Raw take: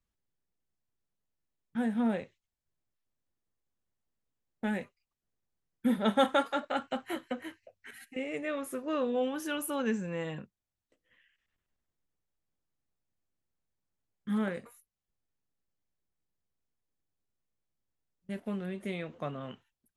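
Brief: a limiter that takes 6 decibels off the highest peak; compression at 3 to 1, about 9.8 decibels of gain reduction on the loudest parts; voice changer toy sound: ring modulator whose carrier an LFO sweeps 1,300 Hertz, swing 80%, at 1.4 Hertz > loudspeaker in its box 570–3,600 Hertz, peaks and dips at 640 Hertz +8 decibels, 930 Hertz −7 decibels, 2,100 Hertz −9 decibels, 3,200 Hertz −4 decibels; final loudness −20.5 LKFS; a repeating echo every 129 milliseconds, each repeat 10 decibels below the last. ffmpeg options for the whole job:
ffmpeg -i in.wav -af "acompressor=threshold=-35dB:ratio=3,alimiter=level_in=5dB:limit=-24dB:level=0:latency=1,volume=-5dB,aecho=1:1:129|258|387|516:0.316|0.101|0.0324|0.0104,aeval=exprs='val(0)*sin(2*PI*1300*n/s+1300*0.8/1.4*sin(2*PI*1.4*n/s))':channel_layout=same,highpass=570,equalizer=frequency=640:width_type=q:width=4:gain=8,equalizer=frequency=930:width_type=q:width=4:gain=-7,equalizer=frequency=2100:width_type=q:width=4:gain=-9,equalizer=frequency=3200:width_type=q:width=4:gain=-4,lowpass=frequency=3600:width=0.5412,lowpass=frequency=3600:width=1.3066,volume=24.5dB" out.wav

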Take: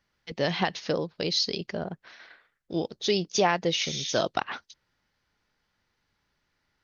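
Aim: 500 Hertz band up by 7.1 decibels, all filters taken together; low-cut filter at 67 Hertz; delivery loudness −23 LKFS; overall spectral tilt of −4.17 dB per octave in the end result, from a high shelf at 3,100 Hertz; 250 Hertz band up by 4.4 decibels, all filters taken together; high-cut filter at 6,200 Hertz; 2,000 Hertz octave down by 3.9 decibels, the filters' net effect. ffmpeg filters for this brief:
ffmpeg -i in.wav -af "highpass=67,lowpass=6200,equalizer=frequency=250:width_type=o:gain=3.5,equalizer=frequency=500:width_type=o:gain=8,equalizer=frequency=2000:width_type=o:gain=-7.5,highshelf=frequency=3100:gain=5.5,volume=1dB" out.wav

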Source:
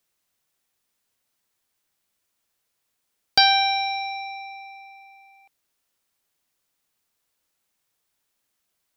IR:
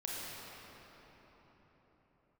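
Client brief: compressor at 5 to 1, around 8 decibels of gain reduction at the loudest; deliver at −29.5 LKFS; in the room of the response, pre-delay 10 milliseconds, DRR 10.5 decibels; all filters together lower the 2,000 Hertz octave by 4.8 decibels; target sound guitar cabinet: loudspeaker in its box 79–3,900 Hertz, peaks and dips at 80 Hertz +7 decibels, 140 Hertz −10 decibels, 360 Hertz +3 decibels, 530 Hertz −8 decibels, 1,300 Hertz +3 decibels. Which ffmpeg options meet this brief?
-filter_complex "[0:a]equalizer=frequency=2000:width_type=o:gain=-7,acompressor=threshold=-21dB:ratio=5,asplit=2[link_01][link_02];[1:a]atrim=start_sample=2205,adelay=10[link_03];[link_02][link_03]afir=irnorm=-1:irlink=0,volume=-13dB[link_04];[link_01][link_04]amix=inputs=2:normalize=0,highpass=79,equalizer=frequency=80:width_type=q:width=4:gain=7,equalizer=frequency=140:width_type=q:width=4:gain=-10,equalizer=frequency=360:width_type=q:width=4:gain=3,equalizer=frequency=530:width_type=q:width=4:gain=-8,equalizer=frequency=1300:width_type=q:width=4:gain=3,lowpass=frequency=3900:width=0.5412,lowpass=frequency=3900:width=1.3066,volume=0.5dB"

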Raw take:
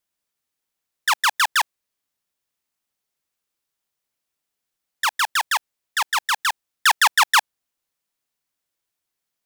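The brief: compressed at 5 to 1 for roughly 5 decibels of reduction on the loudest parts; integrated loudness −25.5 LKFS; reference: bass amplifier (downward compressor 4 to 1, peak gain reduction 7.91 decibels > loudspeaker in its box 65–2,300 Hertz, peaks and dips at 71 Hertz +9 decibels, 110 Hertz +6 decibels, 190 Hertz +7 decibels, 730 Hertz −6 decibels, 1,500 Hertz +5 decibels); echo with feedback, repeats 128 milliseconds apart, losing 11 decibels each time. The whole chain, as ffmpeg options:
ffmpeg -i in.wav -af "acompressor=threshold=-17dB:ratio=5,aecho=1:1:128|256|384:0.282|0.0789|0.0221,acompressor=threshold=-25dB:ratio=4,highpass=frequency=65:width=0.5412,highpass=frequency=65:width=1.3066,equalizer=frequency=71:width_type=q:width=4:gain=9,equalizer=frequency=110:width_type=q:width=4:gain=6,equalizer=frequency=190:width_type=q:width=4:gain=7,equalizer=frequency=730:width_type=q:width=4:gain=-6,equalizer=frequency=1500:width_type=q:width=4:gain=5,lowpass=frequency=2300:width=0.5412,lowpass=frequency=2300:width=1.3066,volume=3.5dB" out.wav

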